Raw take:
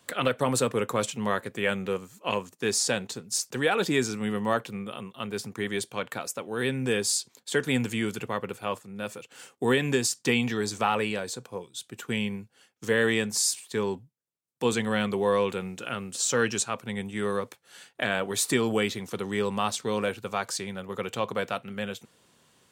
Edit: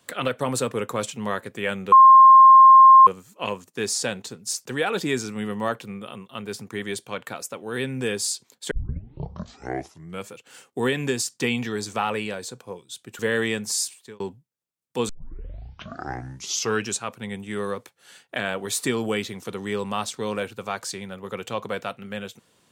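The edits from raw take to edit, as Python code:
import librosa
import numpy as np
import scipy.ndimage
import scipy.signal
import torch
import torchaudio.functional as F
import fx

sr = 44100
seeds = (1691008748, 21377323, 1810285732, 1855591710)

y = fx.edit(x, sr, fx.insert_tone(at_s=1.92, length_s=1.15, hz=1060.0, db=-6.5),
    fx.tape_start(start_s=7.56, length_s=1.6),
    fx.cut(start_s=12.04, length_s=0.81),
    fx.fade_out_span(start_s=13.47, length_s=0.39),
    fx.tape_start(start_s=14.75, length_s=1.78), tone=tone)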